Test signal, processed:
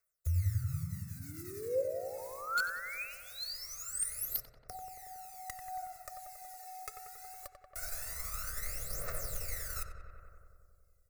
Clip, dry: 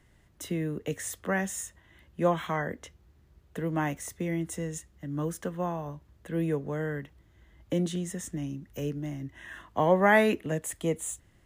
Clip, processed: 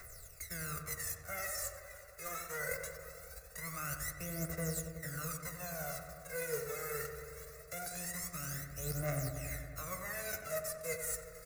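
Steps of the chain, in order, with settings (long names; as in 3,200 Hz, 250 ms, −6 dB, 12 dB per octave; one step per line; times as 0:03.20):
spectral envelope flattened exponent 0.3
comb filter 1.5 ms, depth 54%
reversed playback
downward compressor 6 to 1, threshold −40 dBFS
reversed playback
phase shifter 0.22 Hz, delay 2.4 ms, feedback 75%
phaser with its sweep stopped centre 860 Hz, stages 6
flanger 0.54 Hz, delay 0.8 ms, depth 4.3 ms, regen −76%
in parallel at −4 dB: wrap-around overflow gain 30 dB
on the sum: feedback echo with a low-pass in the loop 92 ms, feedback 80%, low-pass 2,000 Hz, level −6.5 dB
one half of a high-frequency compander encoder only
level +1 dB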